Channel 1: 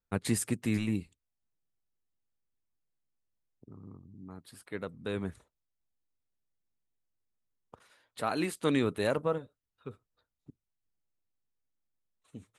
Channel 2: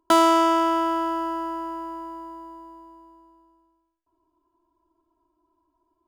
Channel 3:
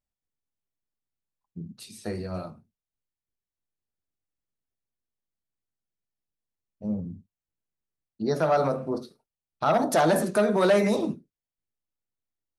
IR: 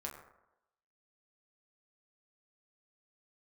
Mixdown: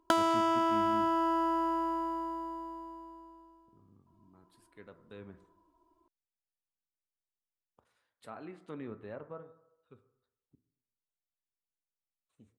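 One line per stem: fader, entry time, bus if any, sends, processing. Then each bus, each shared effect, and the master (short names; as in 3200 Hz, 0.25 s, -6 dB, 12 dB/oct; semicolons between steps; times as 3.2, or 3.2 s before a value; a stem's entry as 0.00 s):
-17.5 dB, 0.05 s, send -3.5 dB, treble ducked by the level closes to 1700 Hz, closed at -27 dBFS
+1.5 dB, 0.00 s, no send, high shelf 9700 Hz -6.5 dB; compressor 4:1, threshold -28 dBFS, peak gain reduction 13.5 dB
off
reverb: on, RT60 0.90 s, pre-delay 6 ms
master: dry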